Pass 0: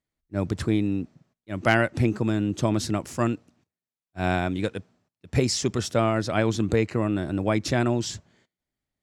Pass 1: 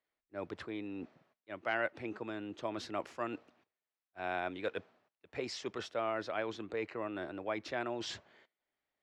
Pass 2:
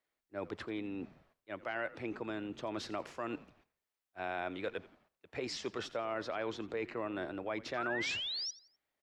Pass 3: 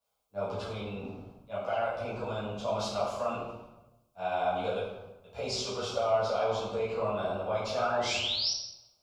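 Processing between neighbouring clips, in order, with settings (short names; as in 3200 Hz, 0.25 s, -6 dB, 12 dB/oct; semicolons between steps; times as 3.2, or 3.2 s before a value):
reverse; compressor 5:1, threshold -33 dBFS, peak gain reduction 16.5 dB; reverse; three-band isolator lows -20 dB, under 370 Hz, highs -22 dB, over 3900 Hz; gain +3 dB
limiter -29 dBFS, peak gain reduction 8 dB; painted sound rise, 7.77–8.51, 1200–5900 Hz -40 dBFS; frequency-shifting echo 85 ms, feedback 38%, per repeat -84 Hz, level -18.5 dB; gain +1.5 dB
fixed phaser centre 770 Hz, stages 4; reverb RT60 1.0 s, pre-delay 7 ms, DRR -11.5 dB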